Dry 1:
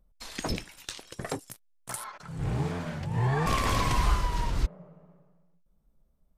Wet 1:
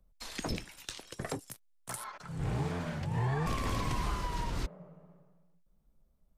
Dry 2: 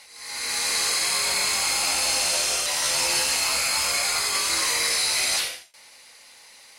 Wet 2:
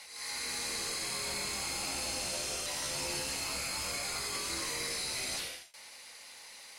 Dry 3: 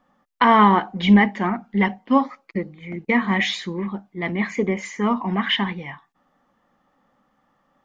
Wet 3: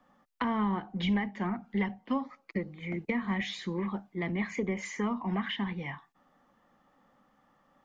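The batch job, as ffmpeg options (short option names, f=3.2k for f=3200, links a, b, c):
-filter_complex "[0:a]acrossover=split=140|410[a][b][c];[a]acompressor=threshold=-32dB:ratio=4[d];[b]acompressor=threshold=-35dB:ratio=4[e];[c]acompressor=threshold=-35dB:ratio=4[f];[d][e][f]amix=inputs=3:normalize=0,volume=-1.5dB"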